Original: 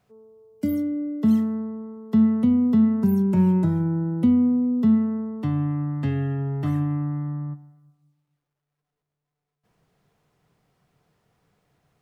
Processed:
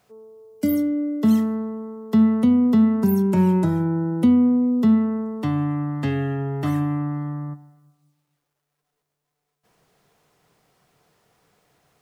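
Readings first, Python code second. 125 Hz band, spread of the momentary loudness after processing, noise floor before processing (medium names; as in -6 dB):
0.0 dB, 10 LU, -84 dBFS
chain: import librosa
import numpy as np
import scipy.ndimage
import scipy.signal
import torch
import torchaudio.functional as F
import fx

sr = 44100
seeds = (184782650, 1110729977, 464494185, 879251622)

y = fx.bass_treble(x, sr, bass_db=-8, treble_db=4)
y = y * 10.0 ** (6.5 / 20.0)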